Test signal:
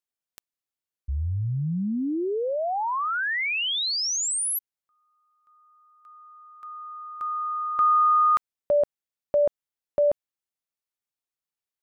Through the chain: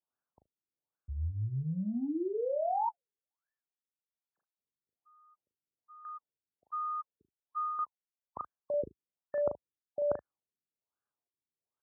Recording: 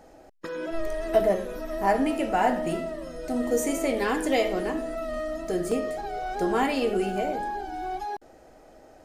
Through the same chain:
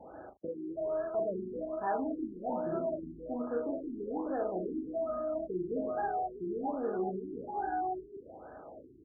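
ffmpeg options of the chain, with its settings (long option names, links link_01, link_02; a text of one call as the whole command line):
ffmpeg -i in.wav -af "highpass=frequency=64:width=0.5412,highpass=frequency=64:width=1.3066,highshelf=frequency=11000:gain=8.5,asoftclip=type=tanh:threshold=-17dB,areverse,acompressor=threshold=-35dB:ratio=6:attack=37:release=284:knee=6:detection=rms,areverse,aecho=1:1:38|75:0.531|0.126,crystalizer=i=9.5:c=0,adynamicequalizer=threshold=0.00708:dfrequency=1400:dqfactor=2.8:tfrequency=1400:tqfactor=2.8:attack=5:release=100:ratio=0.375:range=2.5:mode=cutabove:tftype=bell,afftfilt=real='re*lt(b*sr/1024,410*pow(1800/410,0.5+0.5*sin(2*PI*1.2*pts/sr)))':imag='im*lt(b*sr/1024,410*pow(1800/410,0.5+0.5*sin(2*PI*1.2*pts/sr)))':win_size=1024:overlap=0.75" out.wav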